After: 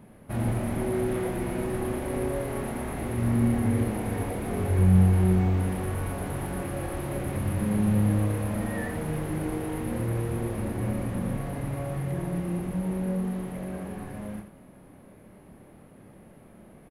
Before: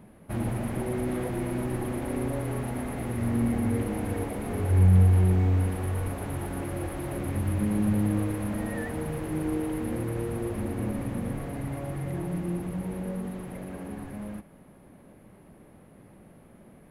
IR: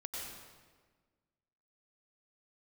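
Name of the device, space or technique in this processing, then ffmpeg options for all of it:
slapback doubling: -filter_complex "[0:a]asplit=3[s0][s1][s2];[s1]adelay=27,volume=0.562[s3];[s2]adelay=86,volume=0.398[s4];[s0][s3][s4]amix=inputs=3:normalize=0"

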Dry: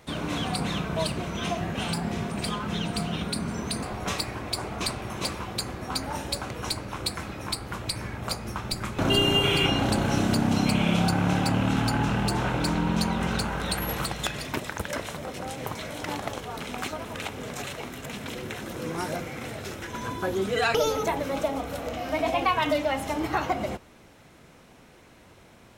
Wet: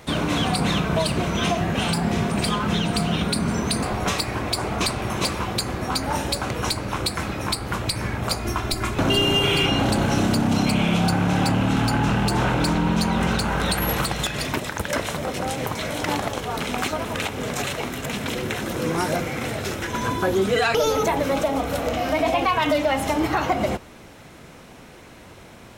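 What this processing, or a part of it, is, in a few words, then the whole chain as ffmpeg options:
soft clipper into limiter: -filter_complex "[0:a]asettb=1/sr,asplit=3[s0][s1][s2];[s0]atrim=end=8.364[s3];[s1]atrim=start=8.36:end=8.95,asetpts=PTS-STARTPTS,afade=t=in:d=0.004:c=qsin,afade=t=out:st=0.586:d=0.004:c=qsin,aecho=1:1:2.9:0.59,atrim=end_sample=26019[s4];[s2]atrim=start=8.946[s5];[s3][s4]acrossfade=d=0.004:c1=hsin:c2=qsin[s6];[s6][s5]acrossfade=d=0.004:c1=qsin:c2=hsin,asoftclip=type=tanh:threshold=0.178,alimiter=limit=0.0891:level=0:latency=1:release=152,volume=2.66"

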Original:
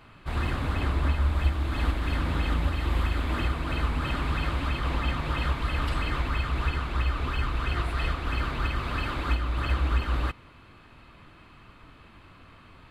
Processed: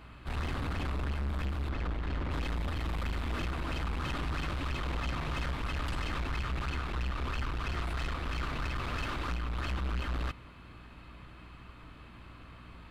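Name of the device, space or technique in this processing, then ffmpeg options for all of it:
valve amplifier with mains hum: -filter_complex "[0:a]asplit=3[s0][s1][s2];[s0]afade=t=out:st=1.68:d=0.02[s3];[s1]aemphasis=mode=reproduction:type=75kf,afade=t=in:st=1.68:d=0.02,afade=t=out:st=2.3:d=0.02[s4];[s2]afade=t=in:st=2.3:d=0.02[s5];[s3][s4][s5]amix=inputs=3:normalize=0,aeval=exprs='(tanh(35.5*val(0)+0.35)-tanh(0.35))/35.5':c=same,aeval=exprs='val(0)+0.00251*(sin(2*PI*60*n/s)+sin(2*PI*2*60*n/s)/2+sin(2*PI*3*60*n/s)/3+sin(2*PI*4*60*n/s)/4+sin(2*PI*5*60*n/s)/5)':c=same"

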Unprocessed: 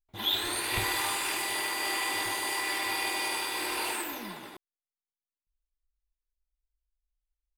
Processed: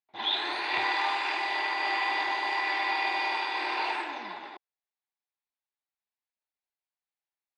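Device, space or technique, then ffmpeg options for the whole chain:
phone earpiece: -af "highpass=450,equalizer=f=500:t=q:w=4:g=-6,equalizer=f=820:t=q:w=4:g=5,equalizer=f=1300:t=q:w=4:g=-4,equalizer=f=3100:t=q:w=4:g=-6,lowpass=f=4000:w=0.5412,lowpass=f=4000:w=1.3066,volume=1.58"

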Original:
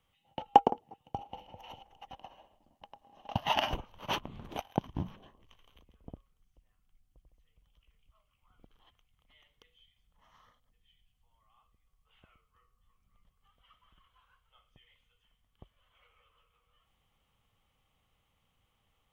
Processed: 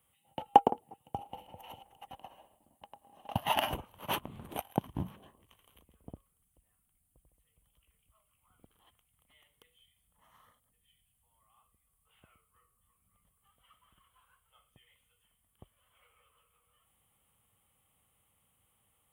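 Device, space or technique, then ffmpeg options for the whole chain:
budget condenser microphone: -af "highpass=62,highshelf=f=7300:t=q:w=3:g=10.5"

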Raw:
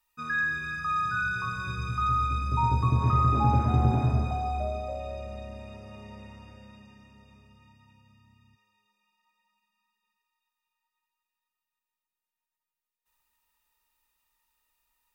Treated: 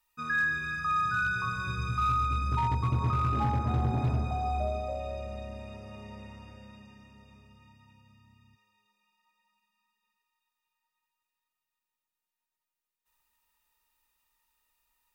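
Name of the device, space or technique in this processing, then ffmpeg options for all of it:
limiter into clipper: -af "alimiter=limit=0.119:level=0:latency=1:release=367,asoftclip=type=hard:threshold=0.0794"

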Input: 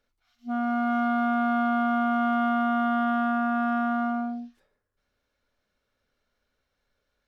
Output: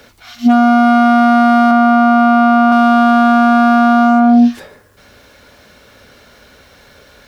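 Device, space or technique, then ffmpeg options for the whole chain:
mastering chain: -filter_complex "[0:a]highpass=60,equalizer=f=1300:t=o:w=0.23:g=-3,acrossover=split=160|1800[s0][s1][s2];[s0]acompressor=threshold=0.00158:ratio=4[s3];[s1]acompressor=threshold=0.0398:ratio=4[s4];[s2]acompressor=threshold=0.00251:ratio=4[s5];[s3][s4][s5]amix=inputs=3:normalize=0,acompressor=threshold=0.02:ratio=2,asoftclip=type=hard:threshold=0.0376,alimiter=level_in=63.1:limit=0.891:release=50:level=0:latency=1,asettb=1/sr,asplit=3[s6][s7][s8];[s6]atrim=end=1.714[s9];[s7]atrim=start=1.71:end=2.72,asetpts=PTS-STARTPTS,afade=t=in:d=0.004:c=qsin,afade=t=out:st=1.006:d=0.004:c=qsin,acrossover=split=2600[s10][s11];[s11]acompressor=threshold=0.0178:ratio=4:attack=1:release=60[s12];[s10][s12]amix=inputs=2:normalize=0[s13];[s8]atrim=start=2.716[s14];[s9][s13]acrossfade=d=0.004:c1=hsin:c2=qsin[s15];[s15][s14]acrossfade=d=0.004:c1=qsin:c2=hsin,volume=0.891"

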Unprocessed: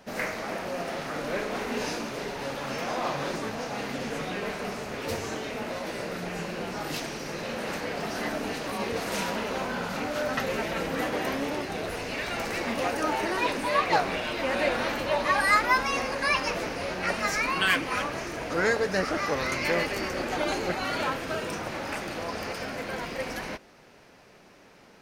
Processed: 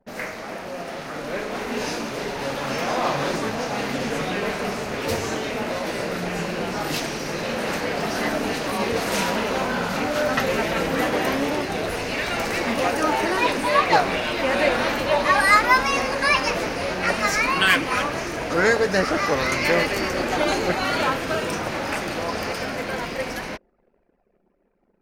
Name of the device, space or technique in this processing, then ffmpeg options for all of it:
voice memo with heavy noise removal: -af "anlmdn=0.0158,dynaudnorm=f=180:g=21:m=2.24"

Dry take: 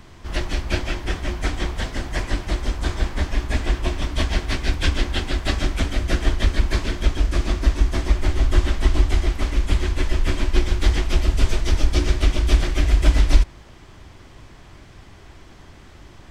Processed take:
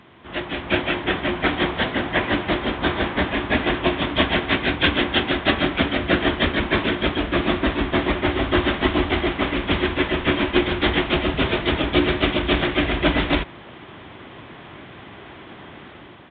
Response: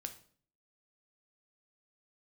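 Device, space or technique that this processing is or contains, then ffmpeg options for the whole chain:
Bluetooth headset: -af "highpass=170,dynaudnorm=f=250:g=5:m=2.82,aresample=8000,aresample=44100" -ar 16000 -c:a sbc -b:a 64k

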